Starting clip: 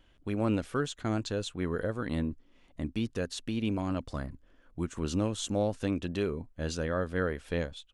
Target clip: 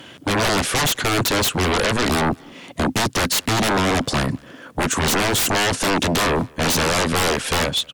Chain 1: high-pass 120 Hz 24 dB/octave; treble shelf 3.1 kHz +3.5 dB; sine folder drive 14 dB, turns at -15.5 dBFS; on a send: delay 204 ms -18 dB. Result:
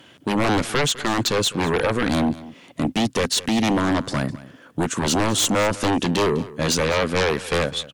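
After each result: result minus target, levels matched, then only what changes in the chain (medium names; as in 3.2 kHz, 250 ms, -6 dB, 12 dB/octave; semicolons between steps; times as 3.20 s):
sine folder: distortion -12 dB; echo-to-direct +9.5 dB
change: sine folder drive 22 dB, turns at -15.5 dBFS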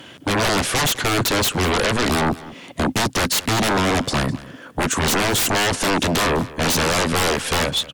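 echo-to-direct +9.5 dB
change: delay 204 ms -27.5 dB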